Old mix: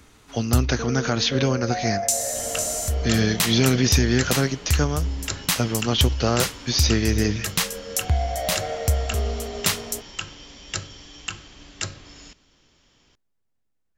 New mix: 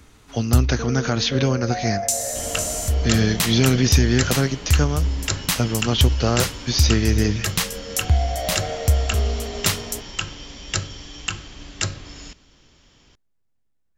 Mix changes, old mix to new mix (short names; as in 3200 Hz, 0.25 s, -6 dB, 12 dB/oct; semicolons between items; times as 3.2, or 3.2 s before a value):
second sound +4.5 dB; master: add low shelf 150 Hz +5 dB